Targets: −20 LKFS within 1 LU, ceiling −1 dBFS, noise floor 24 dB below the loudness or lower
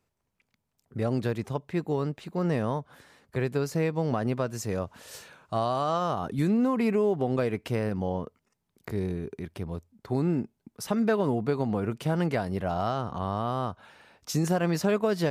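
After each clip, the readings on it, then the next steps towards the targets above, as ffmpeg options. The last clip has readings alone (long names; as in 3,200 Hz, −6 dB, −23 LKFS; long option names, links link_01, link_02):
integrated loudness −29.0 LKFS; sample peak −15.0 dBFS; target loudness −20.0 LKFS
→ -af "volume=9dB"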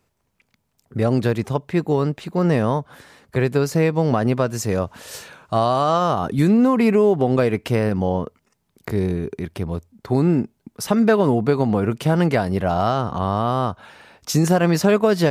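integrated loudness −20.0 LKFS; sample peak −6.0 dBFS; background noise floor −70 dBFS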